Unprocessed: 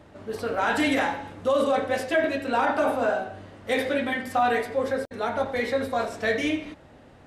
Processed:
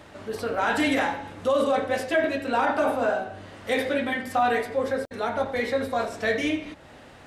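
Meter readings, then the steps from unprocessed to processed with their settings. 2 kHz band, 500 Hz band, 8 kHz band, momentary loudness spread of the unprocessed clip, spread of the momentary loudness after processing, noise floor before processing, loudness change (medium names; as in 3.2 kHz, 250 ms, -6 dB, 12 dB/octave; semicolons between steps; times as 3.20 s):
0.0 dB, 0.0 dB, +0.5 dB, 7 LU, 7 LU, -51 dBFS, 0.0 dB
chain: tape noise reduction on one side only encoder only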